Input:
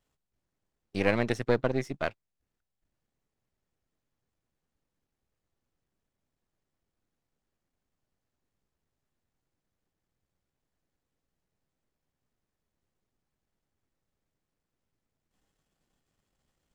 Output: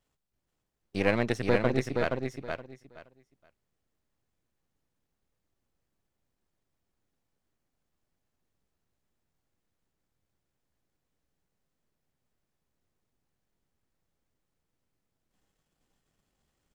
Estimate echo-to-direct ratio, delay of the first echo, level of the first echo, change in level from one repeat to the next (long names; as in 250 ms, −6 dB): −4.5 dB, 472 ms, −4.5 dB, −14.5 dB